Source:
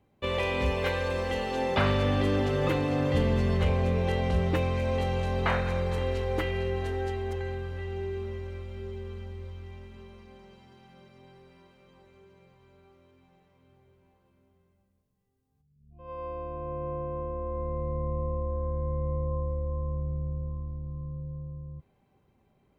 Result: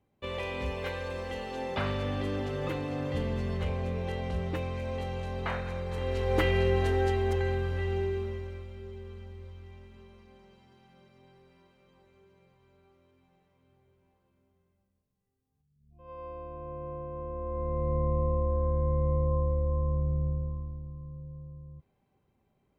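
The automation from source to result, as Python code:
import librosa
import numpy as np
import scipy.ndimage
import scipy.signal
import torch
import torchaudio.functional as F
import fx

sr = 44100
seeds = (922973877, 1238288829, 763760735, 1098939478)

y = fx.gain(x, sr, db=fx.line((5.86, -6.5), (6.45, 4.5), (7.93, 4.5), (8.79, -5.0), (17.11, -5.0), (17.94, 3.0), (20.27, 3.0), (20.98, -5.5)))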